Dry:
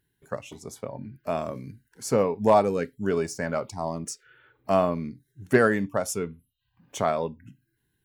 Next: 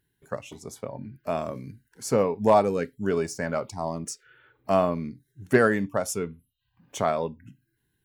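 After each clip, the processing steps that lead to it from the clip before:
no processing that can be heard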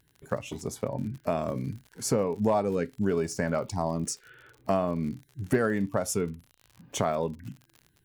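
low-shelf EQ 430 Hz +5 dB
downward compressor 3 to 1, threshold −28 dBFS, peak gain reduction 13 dB
surface crackle 59 per second −42 dBFS
level +3 dB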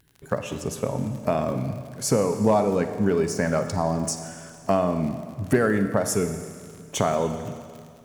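four-comb reverb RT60 2.1 s, DRR 8 dB
level +4.5 dB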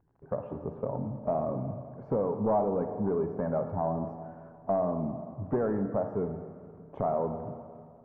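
soft clipping −15 dBFS, distortion −15 dB
transistor ladder low-pass 1,100 Hz, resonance 35%
level +1 dB

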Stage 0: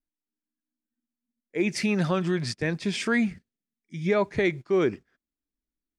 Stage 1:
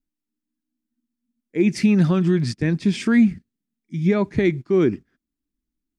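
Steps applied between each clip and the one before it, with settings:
low shelf with overshoot 390 Hz +8 dB, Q 1.5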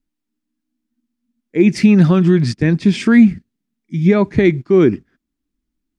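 high-shelf EQ 7,000 Hz −7 dB
level +6.5 dB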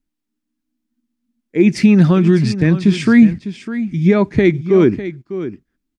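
single-tap delay 602 ms −12.5 dB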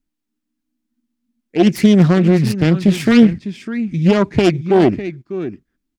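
phase distortion by the signal itself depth 0.38 ms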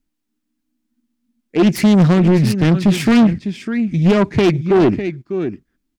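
soft clipping −9.5 dBFS, distortion −13 dB
level +3 dB

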